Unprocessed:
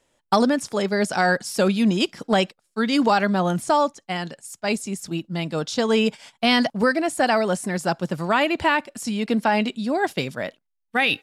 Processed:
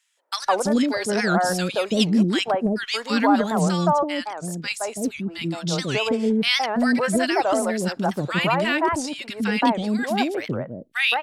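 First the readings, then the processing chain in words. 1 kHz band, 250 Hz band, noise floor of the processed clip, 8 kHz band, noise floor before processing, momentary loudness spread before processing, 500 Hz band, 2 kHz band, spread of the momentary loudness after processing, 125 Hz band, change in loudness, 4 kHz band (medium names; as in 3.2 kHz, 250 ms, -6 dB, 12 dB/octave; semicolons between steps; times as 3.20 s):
-0.5 dB, +1.0 dB, -45 dBFS, +2.0 dB, -74 dBFS, 9 LU, -1.0 dB, -0.5 dB, 8 LU, +1.5 dB, 0.0 dB, +1.0 dB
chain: three bands offset in time highs, mids, lows 170/330 ms, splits 460/1400 Hz; warped record 78 rpm, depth 250 cents; trim +1.5 dB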